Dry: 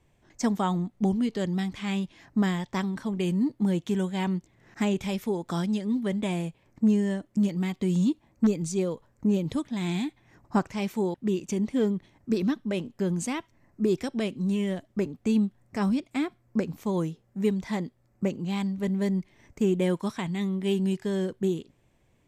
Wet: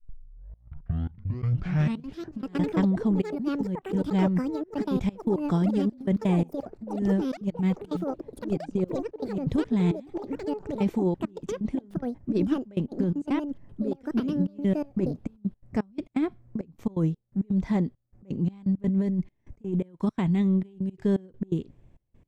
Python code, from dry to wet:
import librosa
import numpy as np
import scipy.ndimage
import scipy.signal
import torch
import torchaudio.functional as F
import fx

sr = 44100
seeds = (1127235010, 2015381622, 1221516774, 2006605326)

y = fx.tape_start_head(x, sr, length_s=2.39)
y = fx.tilt_eq(y, sr, slope=-3.0)
y = fx.over_compress(y, sr, threshold_db=-21.0, ratio=-0.5)
y = fx.step_gate(y, sr, bpm=168, pattern='.xxxxx..x.xx..x', floor_db=-24.0, edge_ms=4.5)
y = fx.echo_pitch(y, sr, ms=701, semitones=7, count=2, db_per_echo=-6.0)
y = y * 10.0 ** (-3.0 / 20.0)